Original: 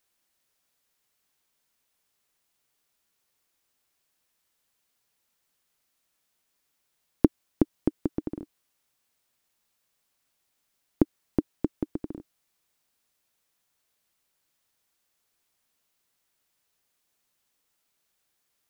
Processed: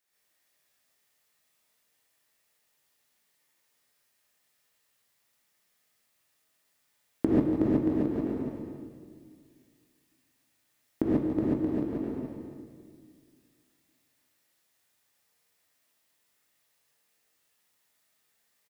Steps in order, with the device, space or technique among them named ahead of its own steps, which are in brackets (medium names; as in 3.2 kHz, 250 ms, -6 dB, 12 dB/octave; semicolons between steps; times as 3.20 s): stadium PA (high-pass 140 Hz 6 dB/octave; peaking EQ 1.9 kHz +5 dB 0.3 oct; loudspeakers at several distances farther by 56 m -10 dB, 98 m -9 dB; reverberation RT60 2.0 s, pre-delay 11 ms, DRR 4.5 dB); gated-style reverb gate 160 ms rising, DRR -6.5 dB; trim -6.5 dB